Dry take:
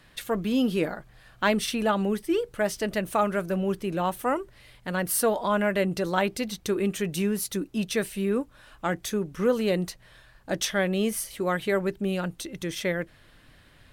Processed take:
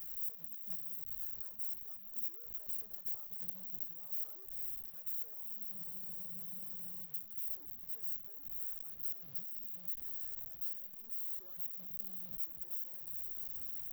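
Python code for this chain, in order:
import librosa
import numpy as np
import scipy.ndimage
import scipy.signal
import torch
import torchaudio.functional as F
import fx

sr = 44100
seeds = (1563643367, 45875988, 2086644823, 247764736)

y = np.sign(x) * np.sqrt(np.mean(np.square(x)))
y = scipy.signal.sosfilt(scipy.signal.cheby2(4, 70, [740.0, 7200.0], 'bandstop', fs=sr, output='sos'), y)
y = scipy.signal.lfilter([1.0, -0.97], [1.0], y)
y = fx.rider(y, sr, range_db=10, speed_s=0.5)
y = fx.backlash(y, sr, play_db=-45.5)
y = fx.spec_freeze(y, sr, seeds[0], at_s=5.75, hold_s=1.3)
y = F.gain(torch.from_numpy(y), -3.0).numpy()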